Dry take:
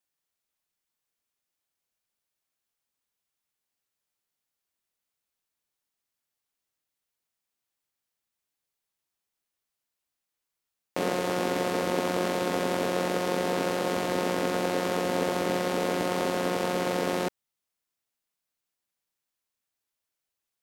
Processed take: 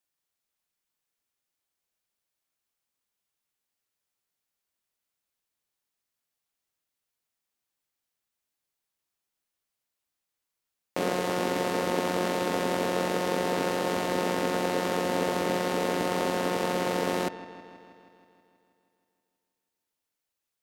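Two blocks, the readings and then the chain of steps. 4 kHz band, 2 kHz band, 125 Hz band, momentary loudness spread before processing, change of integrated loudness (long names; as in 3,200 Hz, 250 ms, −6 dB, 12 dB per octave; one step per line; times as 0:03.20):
0.0 dB, +0.5 dB, 0.0 dB, 1 LU, 0.0 dB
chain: delay with a low-pass on its return 160 ms, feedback 67%, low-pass 3,500 Hz, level −15 dB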